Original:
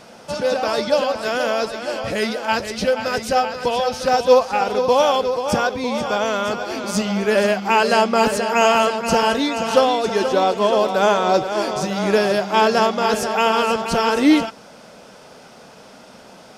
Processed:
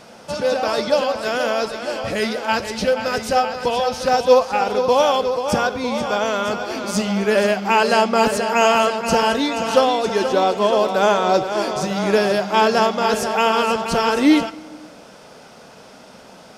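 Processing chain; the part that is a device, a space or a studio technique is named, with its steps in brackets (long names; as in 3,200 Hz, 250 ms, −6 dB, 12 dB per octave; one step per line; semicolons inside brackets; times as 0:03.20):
compressed reverb return (on a send at −12.5 dB: convolution reverb RT60 1.2 s, pre-delay 31 ms + downward compressor, threshold −19 dBFS, peak gain reduction 10.5 dB)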